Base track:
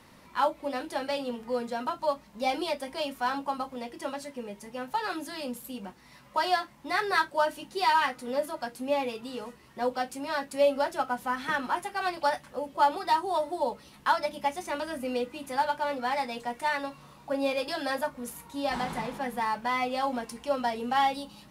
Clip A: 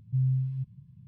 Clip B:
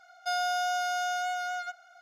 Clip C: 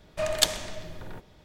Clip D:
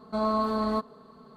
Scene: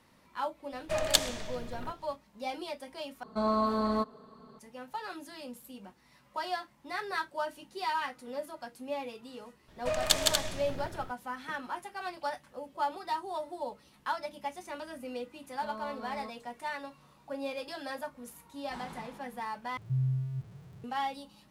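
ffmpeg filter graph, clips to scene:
-filter_complex "[3:a]asplit=2[a][b];[4:a]asplit=2[c][d];[0:a]volume=-8.5dB[e];[b]aecho=1:1:160.3|239.1:0.794|0.562[f];[1:a]aeval=exprs='val(0)+0.5*0.00473*sgn(val(0))':c=same[g];[e]asplit=3[h][i][j];[h]atrim=end=3.234[k];[c]atrim=end=1.36,asetpts=PTS-STARTPTS,volume=-2dB[l];[i]atrim=start=4.586:end=19.774[m];[g]atrim=end=1.07,asetpts=PTS-STARTPTS,volume=-4dB[n];[j]atrim=start=20.836[o];[a]atrim=end=1.44,asetpts=PTS-STARTPTS,volume=-2.5dB,afade=t=in:d=0.004:c=hsin,afade=t=out:st=1.436:d=0.004:c=hsin,adelay=720[p];[f]atrim=end=1.44,asetpts=PTS-STARTPTS,volume=-3.5dB,afade=t=in:d=0.004:c=hsin,afade=t=out:st=1.436:d=0.004:c=hsin,adelay=9680[q];[d]atrim=end=1.36,asetpts=PTS-STARTPTS,volume=-17dB,afade=t=in:d=0.004:c=hsin,afade=t=out:st=1.356:d=0.004:c=hsin,adelay=15490[r];[k][l]acrossfade=d=0.004:c1=hsin:c2=hsin[s];[s][m]acrossfade=d=0.004:c1=hsin:c2=hsin[t];[t][n]acrossfade=d=0.004:c1=hsin:c2=hsin[u];[u][o]acrossfade=d=0.004:c1=hsin:c2=hsin[v];[v][p][q][r]amix=inputs=4:normalize=0"

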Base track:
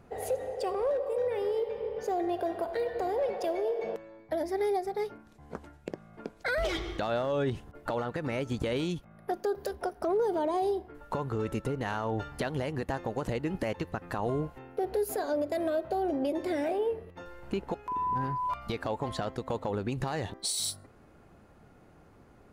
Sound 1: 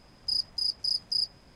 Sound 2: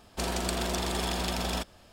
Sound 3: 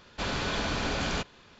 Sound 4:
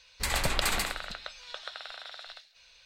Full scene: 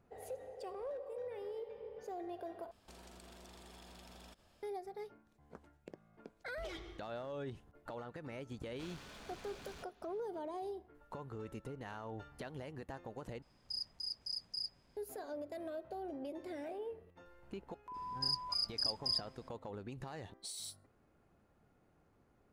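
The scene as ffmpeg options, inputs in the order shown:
-filter_complex "[1:a]asplit=2[a][b];[0:a]volume=-14dB[c];[2:a]acompressor=threshold=-41dB:ratio=6:attack=3.2:release=140:knee=1:detection=peak[d];[3:a]asoftclip=type=hard:threshold=-35.5dB[e];[c]asplit=3[f][g][h];[f]atrim=end=2.714[i];[d]atrim=end=1.92,asetpts=PTS-STARTPTS,volume=-12.5dB[j];[g]atrim=start=4.626:end=13.424[k];[a]atrim=end=1.55,asetpts=PTS-STARTPTS,volume=-13dB[l];[h]atrim=start=14.966[m];[e]atrim=end=1.59,asetpts=PTS-STARTPTS,volume=-16.5dB,afade=t=in:d=0.004:c=hsin,afade=t=out:st=1.586:d=0.004:c=hsin,adelay=8610[n];[b]atrim=end=1.55,asetpts=PTS-STARTPTS,volume=-7.5dB,afade=t=in:d=0.004:c=hsin,afade=t=out:st=1.546:d=0.004:c=hsin,adelay=17940[o];[i][j]acrossfade=d=0.004:c1=hsin:c2=hsin[p];[p][k]acrossfade=d=0.004:c1=hsin:c2=hsin[q];[q][l]acrossfade=d=0.004:c1=hsin:c2=hsin[r];[r][m]acrossfade=d=0.004:c1=hsin:c2=hsin[s];[s][n][o]amix=inputs=3:normalize=0"

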